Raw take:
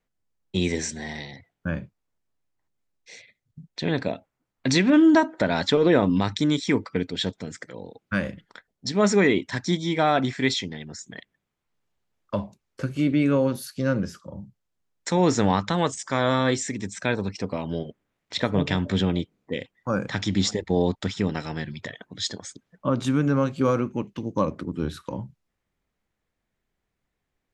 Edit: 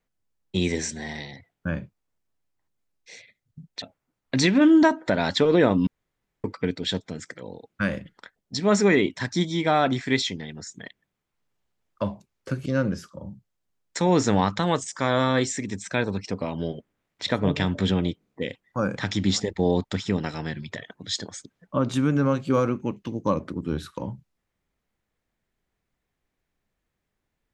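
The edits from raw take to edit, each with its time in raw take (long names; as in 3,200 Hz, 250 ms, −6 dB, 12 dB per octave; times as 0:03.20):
0:03.82–0:04.14: remove
0:06.19–0:06.76: fill with room tone
0:12.98–0:13.77: remove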